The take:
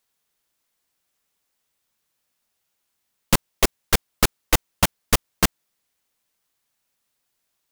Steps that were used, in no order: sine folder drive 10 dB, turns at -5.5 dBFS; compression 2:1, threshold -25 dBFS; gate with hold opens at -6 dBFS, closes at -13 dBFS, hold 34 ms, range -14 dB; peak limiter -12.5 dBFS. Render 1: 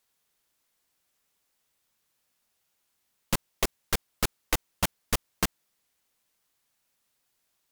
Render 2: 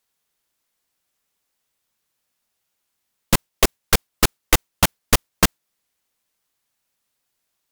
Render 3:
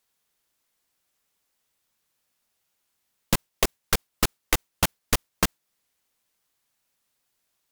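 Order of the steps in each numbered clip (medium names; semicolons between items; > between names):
peak limiter > gate with hold > compression > sine folder; compression > peak limiter > sine folder > gate with hold; peak limiter > sine folder > gate with hold > compression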